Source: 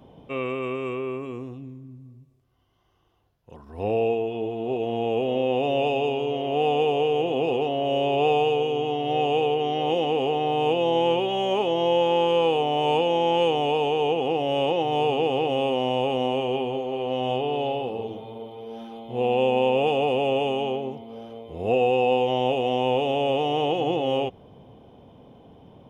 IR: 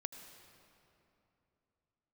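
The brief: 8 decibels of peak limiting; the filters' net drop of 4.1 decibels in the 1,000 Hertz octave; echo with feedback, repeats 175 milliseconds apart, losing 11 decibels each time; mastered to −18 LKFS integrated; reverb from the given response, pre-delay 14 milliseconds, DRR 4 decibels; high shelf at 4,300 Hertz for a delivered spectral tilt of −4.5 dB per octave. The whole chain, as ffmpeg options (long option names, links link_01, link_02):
-filter_complex "[0:a]equalizer=frequency=1000:width_type=o:gain=-6,highshelf=frequency=4300:gain=-7,alimiter=limit=-20dB:level=0:latency=1,aecho=1:1:175|350|525:0.282|0.0789|0.0221,asplit=2[link_01][link_02];[1:a]atrim=start_sample=2205,adelay=14[link_03];[link_02][link_03]afir=irnorm=-1:irlink=0,volume=-1.5dB[link_04];[link_01][link_04]amix=inputs=2:normalize=0,volume=10dB"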